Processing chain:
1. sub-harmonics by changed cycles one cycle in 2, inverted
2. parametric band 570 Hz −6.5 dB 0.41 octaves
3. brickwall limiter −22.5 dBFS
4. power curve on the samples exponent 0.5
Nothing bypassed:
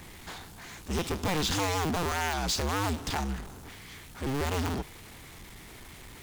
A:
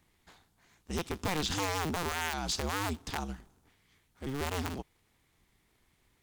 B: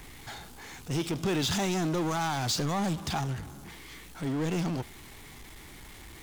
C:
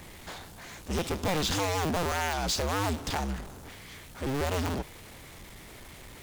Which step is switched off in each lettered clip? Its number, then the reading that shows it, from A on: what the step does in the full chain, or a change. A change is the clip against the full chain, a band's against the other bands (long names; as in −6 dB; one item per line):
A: 4, change in crest factor +4.5 dB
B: 1, 250 Hz band +4.0 dB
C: 2, 500 Hz band +2.0 dB